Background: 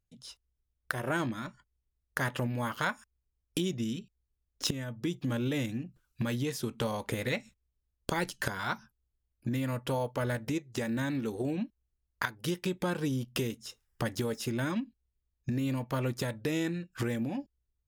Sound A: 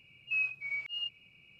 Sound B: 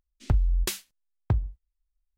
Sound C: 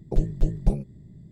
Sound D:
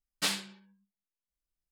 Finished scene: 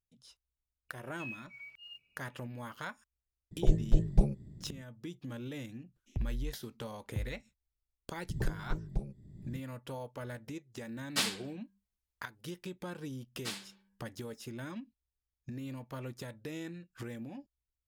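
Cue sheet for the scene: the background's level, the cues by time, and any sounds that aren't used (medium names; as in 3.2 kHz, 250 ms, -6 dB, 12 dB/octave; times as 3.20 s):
background -10.5 dB
0.89 s: add A -13.5 dB + modulation noise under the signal 32 dB
3.51 s: add C -3 dB
5.86 s: add B -13.5 dB + phase shifter stages 8, 1 Hz, lowest notch 320–1400 Hz
8.29 s: add C -13 dB + three bands compressed up and down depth 100%
10.94 s: add D -1 dB
13.23 s: add D -10.5 dB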